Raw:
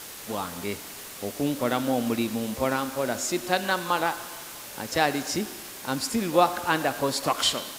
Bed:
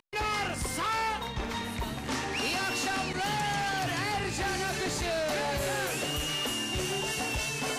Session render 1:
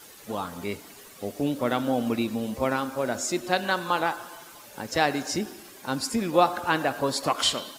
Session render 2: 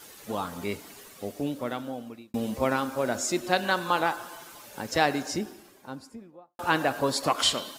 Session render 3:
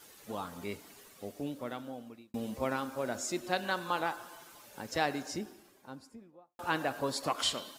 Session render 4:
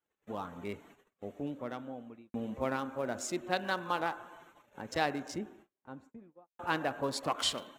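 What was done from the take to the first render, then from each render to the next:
broadband denoise 10 dB, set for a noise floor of −41 dBFS
0:00.96–0:02.34: fade out; 0:04.92–0:06.59: fade out and dull
level −7.5 dB
adaptive Wiener filter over 9 samples; noise gate −57 dBFS, range −30 dB

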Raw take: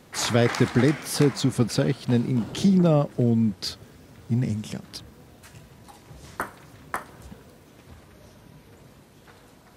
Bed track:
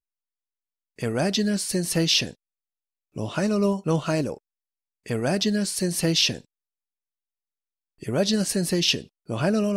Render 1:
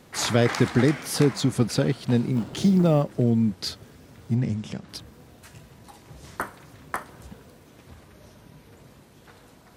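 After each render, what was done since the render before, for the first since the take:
0:02.32–0:03.03: mu-law and A-law mismatch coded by A
0:04.35–0:04.89: high-frequency loss of the air 66 metres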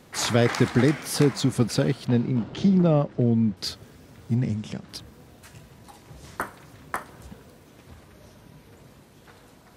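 0:02.07–0:03.57: high-frequency loss of the air 140 metres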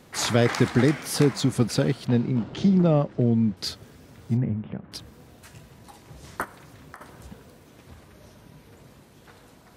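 0:04.37–0:04.92: Gaussian smoothing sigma 4.1 samples
0:06.44–0:07.01: downward compressor, threshold −40 dBFS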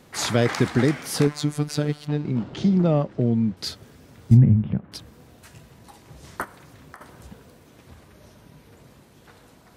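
0:01.27–0:02.25: phases set to zero 148 Hz
0:04.31–0:04.79: bass and treble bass +13 dB, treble +10 dB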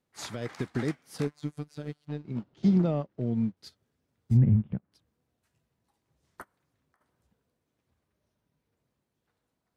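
brickwall limiter −13 dBFS, peak gain reduction 9 dB
expander for the loud parts 2.5 to 1, over −36 dBFS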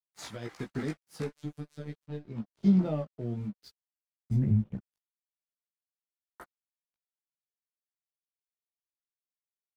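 dead-zone distortion −55 dBFS
multi-voice chorus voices 4, 0.49 Hz, delay 17 ms, depth 3 ms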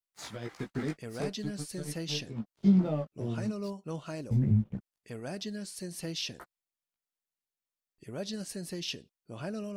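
mix in bed track −15 dB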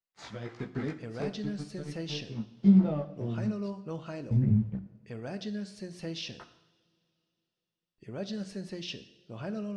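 high-frequency loss of the air 120 metres
coupled-rooms reverb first 0.8 s, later 3.2 s, from −21 dB, DRR 10 dB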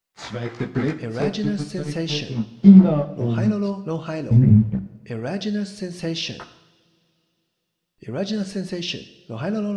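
level +11.5 dB
brickwall limiter −1 dBFS, peak gain reduction 1 dB

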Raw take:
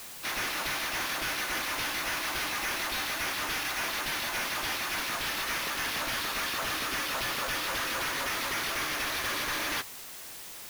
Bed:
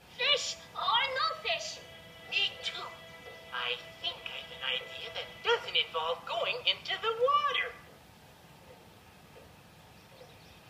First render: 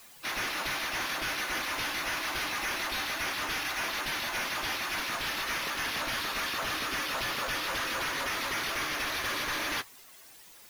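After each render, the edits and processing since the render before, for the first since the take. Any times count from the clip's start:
broadband denoise 11 dB, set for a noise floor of −44 dBFS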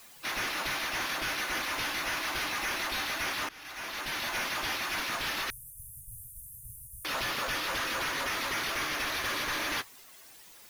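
0:03.49–0:04.27: fade in, from −23 dB
0:05.50–0:07.05: Chebyshev band-stop filter 130–8,200 Hz, order 5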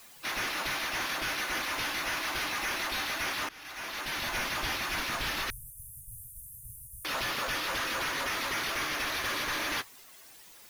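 0:04.17–0:05.71: low-shelf EQ 130 Hz +9.5 dB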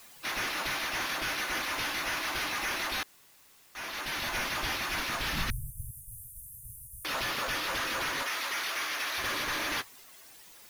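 0:03.03–0:03.75: fill with room tone
0:05.32–0:05.91: low shelf with overshoot 260 Hz +11 dB, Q 1.5
0:08.23–0:09.18: high-pass filter 780 Hz 6 dB per octave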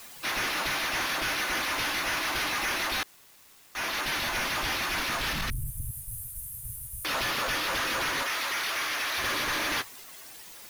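leveller curve on the samples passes 2
brickwall limiter −26 dBFS, peak gain reduction 5 dB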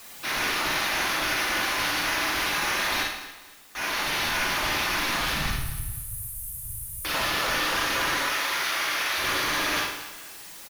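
repeating echo 234 ms, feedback 32%, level −15 dB
four-comb reverb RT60 0.65 s, DRR −0.5 dB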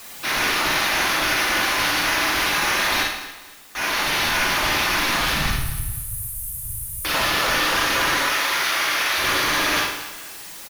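level +5.5 dB

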